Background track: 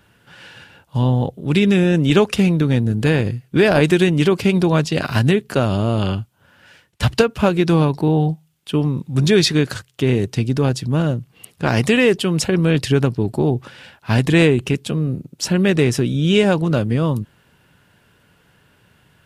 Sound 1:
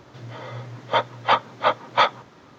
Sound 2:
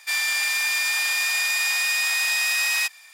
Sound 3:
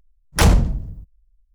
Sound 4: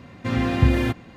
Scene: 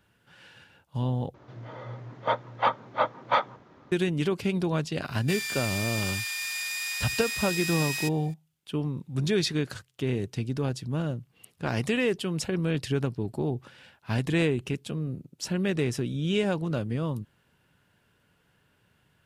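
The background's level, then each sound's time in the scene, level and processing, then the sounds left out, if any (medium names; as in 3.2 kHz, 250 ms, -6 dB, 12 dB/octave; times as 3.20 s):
background track -11.5 dB
1.34 s: replace with 1 -4 dB + treble shelf 2.8 kHz -12 dB
5.21 s: add 2 -15.5 dB + tilt shelf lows -7.5 dB, about 870 Hz
not used: 3, 4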